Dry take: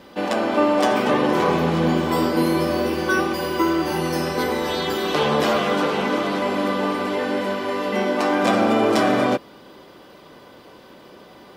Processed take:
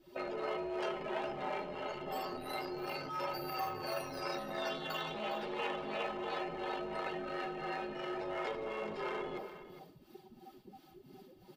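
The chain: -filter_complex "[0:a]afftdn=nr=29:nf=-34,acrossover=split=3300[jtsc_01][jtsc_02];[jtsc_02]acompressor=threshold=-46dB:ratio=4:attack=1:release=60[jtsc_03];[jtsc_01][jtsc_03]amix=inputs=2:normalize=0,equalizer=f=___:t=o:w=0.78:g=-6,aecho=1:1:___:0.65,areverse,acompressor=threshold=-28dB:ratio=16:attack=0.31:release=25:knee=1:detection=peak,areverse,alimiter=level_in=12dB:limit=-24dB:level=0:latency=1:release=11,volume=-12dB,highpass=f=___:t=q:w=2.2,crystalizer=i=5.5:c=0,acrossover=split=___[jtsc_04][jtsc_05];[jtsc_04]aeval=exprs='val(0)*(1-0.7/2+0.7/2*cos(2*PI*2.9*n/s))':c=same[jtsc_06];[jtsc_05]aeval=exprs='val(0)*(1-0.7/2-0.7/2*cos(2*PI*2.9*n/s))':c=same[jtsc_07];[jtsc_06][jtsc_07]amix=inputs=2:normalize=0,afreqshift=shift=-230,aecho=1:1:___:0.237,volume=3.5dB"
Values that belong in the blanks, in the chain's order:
10000, 4.7, 720, 590, 409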